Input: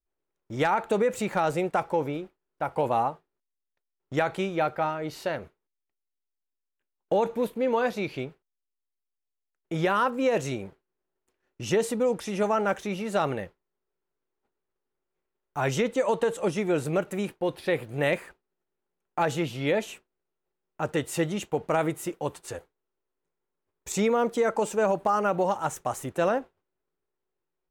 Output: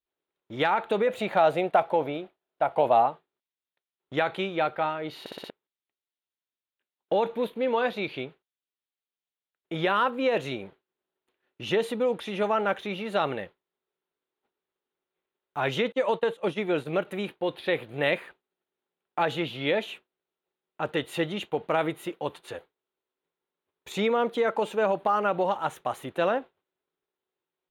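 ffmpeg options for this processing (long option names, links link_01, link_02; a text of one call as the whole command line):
ffmpeg -i in.wav -filter_complex "[0:a]asettb=1/sr,asplit=3[link_01][link_02][link_03];[link_01]atrim=end=1.074[link_04];[link_02]atrim=start=1.07:end=3.06,asetpts=PTS-STARTPTS,afade=type=in:duration=0.004:curve=qsin,afade=type=out:start_time=1.986:duration=0.004:curve=qsin,equalizer=frequency=670:width_type=o:width=0.38:gain=10[link_05];[link_03]atrim=start=3.056[link_06];[link_04][link_05]acrossfade=duration=0.004:curve1=hsin:curve2=qsin[link_07];[link_07][link_06]acrossfade=duration=0.004:curve1=qsin:curve2=hsin,asettb=1/sr,asplit=3[link_08][link_09][link_10];[link_08]atrim=end=15.924[link_11];[link_09]atrim=start=15.92:end=17.05,asetpts=PTS-STARTPTS,afade=type=in:duration=0.004:curve=qsin,afade=type=out:start_time=1.126:duration=0.004:curve=qsin,agate=range=-33dB:threshold=-29dB:ratio=3:release=100:detection=peak[link_12];[link_10]atrim=start=17.046[link_13];[link_11][link_12]acrossfade=duration=0.004:curve1=hsin:curve2=qsin[link_14];[link_14][link_13]acrossfade=duration=0.004:curve1=qsin:curve2=hsin,asplit=6[link_15][link_16][link_17][link_18][link_19][link_20];[link_15]atrim=end=5.262[link_21];[link_16]atrim=start=5.198:end=5.262[link_22];[link_17]atrim=start=5.198:end=5.262[link_23];[link_18]atrim=start=5.198:end=5.262[link_24];[link_19]atrim=start=5.198:end=5.262[link_25];[link_20]atrim=start=5.498[link_26];[link_21][link_22]acrossfade=duration=0.004:curve1=hsin:curve2=hsin[link_27];[link_27][link_23]acrossfade=duration=0.004:curve1=hsin:curve2=hsin[link_28];[link_28][link_24]acrossfade=duration=0.004:curve1=hsin:curve2=hsin[link_29];[link_29][link_25]acrossfade=duration=0.004:curve1=hsin:curve2=hsin[link_30];[link_30][link_26]acrossfade=duration=0.004:curve1=hsin:curve2=hsin,highpass=frequency=220:poles=1,highshelf=frequency=4500:width_type=q:width=3:gain=-7,bandreject=frequency=7800:width=6.5" out.wav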